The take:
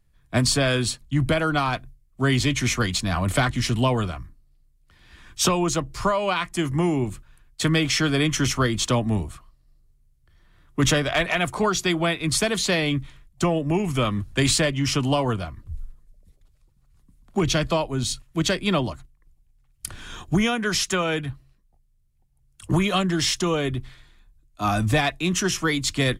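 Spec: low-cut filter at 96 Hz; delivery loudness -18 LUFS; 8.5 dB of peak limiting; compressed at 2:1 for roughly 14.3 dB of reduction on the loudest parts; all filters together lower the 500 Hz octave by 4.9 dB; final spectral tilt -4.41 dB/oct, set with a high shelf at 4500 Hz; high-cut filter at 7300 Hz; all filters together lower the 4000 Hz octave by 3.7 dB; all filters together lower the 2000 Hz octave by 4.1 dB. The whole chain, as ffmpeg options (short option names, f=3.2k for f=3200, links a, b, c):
-af "highpass=96,lowpass=7.3k,equalizer=f=500:t=o:g=-6.5,equalizer=f=2k:t=o:g=-4.5,equalizer=f=4k:t=o:g=-5,highshelf=f=4.5k:g=4,acompressor=threshold=-46dB:ratio=2,volume=22.5dB,alimiter=limit=-8.5dB:level=0:latency=1"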